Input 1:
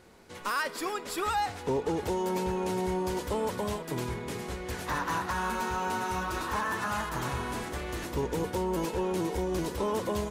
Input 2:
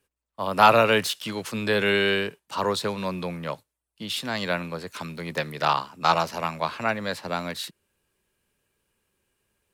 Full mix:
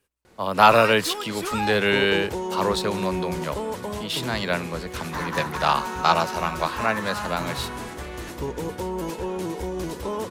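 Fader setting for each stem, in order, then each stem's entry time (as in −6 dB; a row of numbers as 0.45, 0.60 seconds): +1.0, +1.5 decibels; 0.25, 0.00 seconds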